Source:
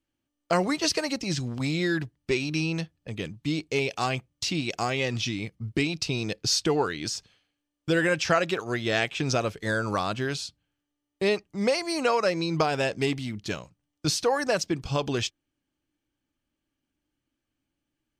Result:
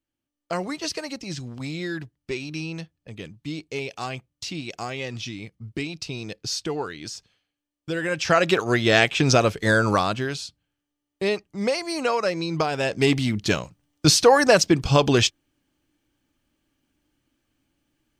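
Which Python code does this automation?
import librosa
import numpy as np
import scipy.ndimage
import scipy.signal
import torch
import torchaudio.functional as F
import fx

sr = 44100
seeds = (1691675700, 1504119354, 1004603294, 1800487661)

y = fx.gain(x, sr, db=fx.line((8.0, -4.0), (8.52, 8.0), (9.89, 8.0), (10.33, 0.5), (12.78, 0.5), (13.18, 9.5)))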